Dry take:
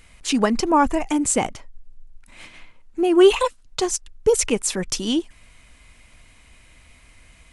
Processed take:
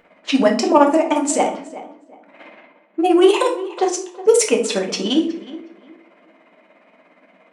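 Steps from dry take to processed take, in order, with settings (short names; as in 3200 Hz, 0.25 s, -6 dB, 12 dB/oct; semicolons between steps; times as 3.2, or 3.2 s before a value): low-pass opened by the level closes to 1300 Hz, open at -14 dBFS; bell 610 Hz +10 dB 0.41 oct; notches 60/120/180/240/300/360/420/480 Hz; in parallel at -1 dB: compressor, threshold -25 dBFS, peak gain reduction 17.5 dB; on the sum: tremolo 17 Hz, depth 74%; soft clip -5 dBFS, distortion -22 dB; brick-wall FIR high-pass 180 Hz; tape echo 0.365 s, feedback 29%, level -14.5 dB, low-pass 2000 Hz; on a send at -2 dB: reverb, pre-delay 7 ms; on the sum: gain +2 dB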